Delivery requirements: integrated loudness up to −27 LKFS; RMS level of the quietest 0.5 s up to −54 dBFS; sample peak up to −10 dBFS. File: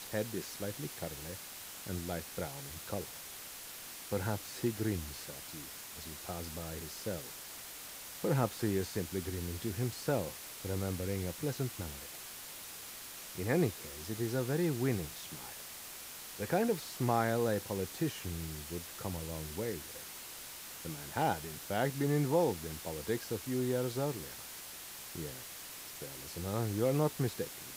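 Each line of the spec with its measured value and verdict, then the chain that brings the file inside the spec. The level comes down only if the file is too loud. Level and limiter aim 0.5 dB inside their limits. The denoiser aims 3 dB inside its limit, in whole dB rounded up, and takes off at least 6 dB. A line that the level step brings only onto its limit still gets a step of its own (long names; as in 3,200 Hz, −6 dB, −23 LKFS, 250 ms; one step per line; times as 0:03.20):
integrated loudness −37.0 LKFS: in spec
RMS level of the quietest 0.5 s −47 dBFS: out of spec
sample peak −18.0 dBFS: in spec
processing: broadband denoise 10 dB, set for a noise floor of −47 dBFS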